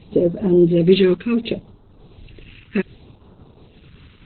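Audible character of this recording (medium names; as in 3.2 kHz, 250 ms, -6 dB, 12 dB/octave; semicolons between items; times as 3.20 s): random-step tremolo; phasing stages 2, 0.67 Hz, lowest notch 690–2100 Hz; Opus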